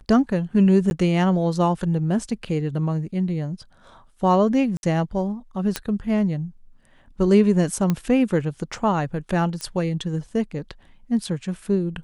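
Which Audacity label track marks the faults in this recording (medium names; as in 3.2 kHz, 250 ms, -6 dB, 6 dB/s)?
0.900000	0.910000	dropout 11 ms
2.290000	2.290000	dropout 3 ms
4.770000	4.830000	dropout 61 ms
5.760000	5.760000	pop -8 dBFS
7.900000	7.900000	pop -10 dBFS
9.610000	9.610000	pop -15 dBFS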